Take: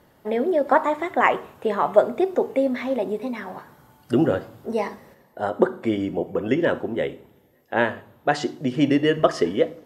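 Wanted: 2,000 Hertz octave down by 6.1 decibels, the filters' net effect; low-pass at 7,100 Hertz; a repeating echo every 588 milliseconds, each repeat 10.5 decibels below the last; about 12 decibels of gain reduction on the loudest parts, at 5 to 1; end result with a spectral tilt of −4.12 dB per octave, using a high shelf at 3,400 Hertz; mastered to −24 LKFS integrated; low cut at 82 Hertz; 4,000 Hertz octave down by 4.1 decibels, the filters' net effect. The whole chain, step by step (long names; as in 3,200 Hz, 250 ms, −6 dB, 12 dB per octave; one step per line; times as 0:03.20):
high-pass filter 82 Hz
low-pass filter 7,100 Hz
parametric band 2,000 Hz −8.5 dB
high-shelf EQ 3,400 Hz +9 dB
parametric band 4,000 Hz −8 dB
downward compressor 5 to 1, threshold −25 dBFS
repeating echo 588 ms, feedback 30%, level −10.5 dB
level +6.5 dB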